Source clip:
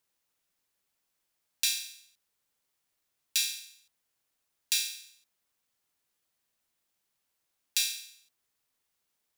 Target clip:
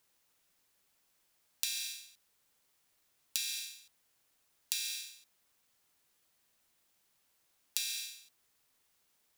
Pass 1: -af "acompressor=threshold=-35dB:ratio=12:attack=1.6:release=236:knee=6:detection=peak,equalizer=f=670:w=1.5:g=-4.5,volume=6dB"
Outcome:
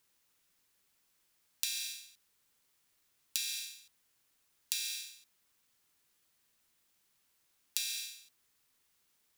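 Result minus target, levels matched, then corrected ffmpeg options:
500 Hz band -2.5 dB
-af "acompressor=threshold=-35dB:ratio=12:attack=1.6:release=236:knee=6:detection=peak,volume=6dB"

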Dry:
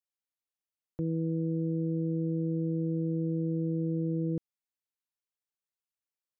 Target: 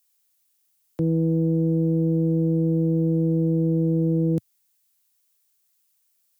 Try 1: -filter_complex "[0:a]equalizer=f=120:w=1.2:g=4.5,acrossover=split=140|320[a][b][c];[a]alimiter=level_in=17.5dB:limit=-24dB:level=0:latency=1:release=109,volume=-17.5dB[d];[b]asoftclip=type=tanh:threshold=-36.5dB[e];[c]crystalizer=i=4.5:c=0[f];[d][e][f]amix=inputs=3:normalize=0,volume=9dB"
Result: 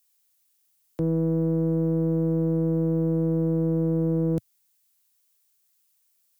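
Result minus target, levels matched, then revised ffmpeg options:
soft clip: distortion +15 dB
-filter_complex "[0:a]equalizer=f=120:w=1.2:g=4.5,acrossover=split=140|320[a][b][c];[a]alimiter=level_in=17.5dB:limit=-24dB:level=0:latency=1:release=109,volume=-17.5dB[d];[b]asoftclip=type=tanh:threshold=-26dB[e];[c]crystalizer=i=4.5:c=0[f];[d][e][f]amix=inputs=3:normalize=0,volume=9dB"

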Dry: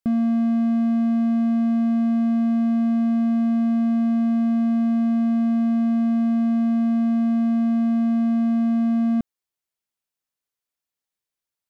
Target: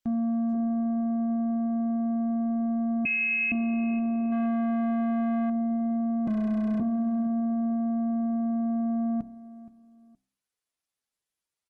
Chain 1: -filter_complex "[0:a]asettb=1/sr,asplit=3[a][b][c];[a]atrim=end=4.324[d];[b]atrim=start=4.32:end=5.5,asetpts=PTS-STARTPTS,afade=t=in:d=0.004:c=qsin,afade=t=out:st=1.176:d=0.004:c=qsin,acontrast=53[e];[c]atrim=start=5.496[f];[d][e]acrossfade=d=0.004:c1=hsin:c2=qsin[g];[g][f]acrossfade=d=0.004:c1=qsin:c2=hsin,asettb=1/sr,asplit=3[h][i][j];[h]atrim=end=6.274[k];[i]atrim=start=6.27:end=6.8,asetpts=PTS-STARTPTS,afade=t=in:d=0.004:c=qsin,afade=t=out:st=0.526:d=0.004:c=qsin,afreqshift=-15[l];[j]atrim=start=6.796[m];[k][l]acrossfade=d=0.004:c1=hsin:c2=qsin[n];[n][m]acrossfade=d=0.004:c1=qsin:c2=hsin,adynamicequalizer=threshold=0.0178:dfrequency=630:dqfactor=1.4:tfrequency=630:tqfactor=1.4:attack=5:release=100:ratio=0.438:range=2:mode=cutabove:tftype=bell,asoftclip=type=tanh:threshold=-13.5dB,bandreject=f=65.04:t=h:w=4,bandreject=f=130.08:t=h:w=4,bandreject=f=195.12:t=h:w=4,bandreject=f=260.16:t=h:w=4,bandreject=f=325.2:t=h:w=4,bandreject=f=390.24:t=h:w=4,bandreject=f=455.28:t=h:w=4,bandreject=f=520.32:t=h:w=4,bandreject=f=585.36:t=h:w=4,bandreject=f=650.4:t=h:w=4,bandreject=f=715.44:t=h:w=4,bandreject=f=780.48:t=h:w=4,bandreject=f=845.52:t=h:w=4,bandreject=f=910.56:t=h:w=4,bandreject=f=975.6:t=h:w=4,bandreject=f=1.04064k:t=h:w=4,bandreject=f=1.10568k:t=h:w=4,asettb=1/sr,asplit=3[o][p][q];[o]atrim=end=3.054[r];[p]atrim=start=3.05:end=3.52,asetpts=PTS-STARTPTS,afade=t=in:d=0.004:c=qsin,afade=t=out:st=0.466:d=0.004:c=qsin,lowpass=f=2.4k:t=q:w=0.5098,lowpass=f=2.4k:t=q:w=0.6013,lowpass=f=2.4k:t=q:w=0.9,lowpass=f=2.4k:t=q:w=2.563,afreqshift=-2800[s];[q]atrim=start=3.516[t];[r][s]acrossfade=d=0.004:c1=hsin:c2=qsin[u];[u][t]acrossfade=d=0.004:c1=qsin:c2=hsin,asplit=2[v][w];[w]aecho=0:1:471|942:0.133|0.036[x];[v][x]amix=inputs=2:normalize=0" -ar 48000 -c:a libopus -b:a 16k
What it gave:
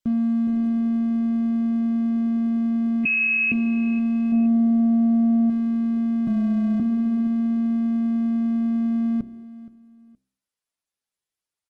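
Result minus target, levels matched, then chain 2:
soft clip: distortion -9 dB
-filter_complex "[0:a]asettb=1/sr,asplit=3[a][b][c];[a]atrim=end=4.324[d];[b]atrim=start=4.32:end=5.5,asetpts=PTS-STARTPTS,afade=t=in:d=0.004:c=qsin,afade=t=out:st=1.176:d=0.004:c=qsin,acontrast=53[e];[c]atrim=start=5.496[f];[d][e]acrossfade=d=0.004:c1=hsin:c2=qsin[g];[g][f]acrossfade=d=0.004:c1=qsin:c2=hsin,asettb=1/sr,asplit=3[h][i][j];[h]atrim=end=6.274[k];[i]atrim=start=6.27:end=6.8,asetpts=PTS-STARTPTS,afade=t=in:d=0.004:c=qsin,afade=t=out:st=0.526:d=0.004:c=qsin,afreqshift=-15[l];[j]atrim=start=6.796[m];[k][l]acrossfade=d=0.004:c1=hsin:c2=qsin[n];[n][m]acrossfade=d=0.004:c1=qsin:c2=hsin,adynamicequalizer=threshold=0.0178:dfrequency=630:dqfactor=1.4:tfrequency=630:tqfactor=1.4:attack=5:release=100:ratio=0.438:range=2:mode=cutabove:tftype=bell,asoftclip=type=tanh:threshold=-24.5dB,bandreject=f=65.04:t=h:w=4,bandreject=f=130.08:t=h:w=4,bandreject=f=195.12:t=h:w=4,bandreject=f=260.16:t=h:w=4,bandreject=f=325.2:t=h:w=4,bandreject=f=390.24:t=h:w=4,bandreject=f=455.28:t=h:w=4,bandreject=f=520.32:t=h:w=4,bandreject=f=585.36:t=h:w=4,bandreject=f=650.4:t=h:w=4,bandreject=f=715.44:t=h:w=4,bandreject=f=780.48:t=h:w=4,bandreject=f=845.52:t=h:w=4,bandreject=f=910.56:t=h:w=4,bandreject=f=975.6:t=h:w=4,bandreject=f=1.04064k:t=h:w=4,bandreject=f=1.10568k:t=h:w=4,asettb=1/sr,asplit=3[o][p][q];[o]atrim=end=3.054[r];[p]atrim=start=3.05:end=3.52,asetpts=PTS-STARTPTS,afade=t=in:d=0.004:c=qsin,afade=t=out:st=0.466:d=0.004:c=qsin,lowpass=f=2.4k:t=q:w=0.5098,lowpass=f=2.4k:t=q:w=0.6013,lowpass=f=2.4k:t=q:w=0.9,lowpass=f=2.4k:t=q:w=2.563,afreqshift=-2800[s];[q]atrim=start=3.516[t];[r][s]acrossfade=d=0.004:c1=hsin:c2=qsin[u];[u][t]acrossfade=d=0.004:c1=qsin:c2=hsin,asplit=2[v][w];[w]aecho=0:1:471|942:0.133|0.036[x];[v][x]amix=inputs=2:normalize=0" -ar 48000 -c:a libopus -b:a 16k

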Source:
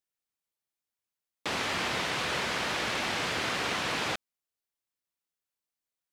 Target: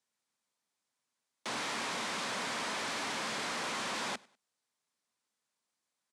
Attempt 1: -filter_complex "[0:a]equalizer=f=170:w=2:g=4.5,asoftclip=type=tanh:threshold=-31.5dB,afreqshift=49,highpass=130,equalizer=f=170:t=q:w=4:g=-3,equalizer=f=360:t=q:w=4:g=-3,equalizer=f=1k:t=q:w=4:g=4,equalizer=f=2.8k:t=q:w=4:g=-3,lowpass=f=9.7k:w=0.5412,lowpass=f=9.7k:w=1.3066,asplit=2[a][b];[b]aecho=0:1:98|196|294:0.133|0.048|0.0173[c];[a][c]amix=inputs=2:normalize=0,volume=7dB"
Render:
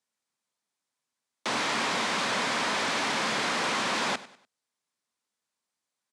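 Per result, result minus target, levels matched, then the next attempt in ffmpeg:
echo-to-direct +7.5 dB; soft clip: distortion -6 dB
-filter_complex "[0:a]equalizer=f=170:w=2:g=4.5,asoftclip=type=tanh:threshold=-31.5dB,afreqshift=49,highpass=130,equalizer=f=170:t=q:w=4:g=-3,equalizer=f=360:t=q:w=4:g=-3,equalizer=f=1k:t=q:w=4:g=4,equalizer=f=2.8k:t=q:w=4:g=-3,lowpass=f=9.7k:w=0.5412,lowpass=f=9.7k:w=1.3066,asplit=2[a][b];[b]aecho=0:1:98|196:0.0562|0.0202[c];[a][c]amix=inputs=2:normalize=0,volume=7dB"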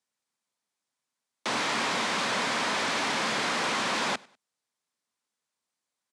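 soft clip: distortion -6 dB
-filter_complex "[0:a]equalizer=f=170:w=2:g=4.5,asoftclip=type=tanh:threshold=-42.5dB,afreqshift=49,highpass=130,equalizer=f=170:t=q:w=4:g=-3,equalizer=f=360:t=q:w=4:g=-3,equalizer=f=1k:t=q:w=4:g=4,equalizer=f=2.8k:t=q:w=4:g=-3,lowpass=f=9.7k:w=0.5412,lowpass=f=9.7k:w=1.3066,asplit=2[a][b];[b]aecho=0:1:98|196:0.0562|0.0202[c];[a][c]amix=inputs=2:normalize=0,volume=7dB"

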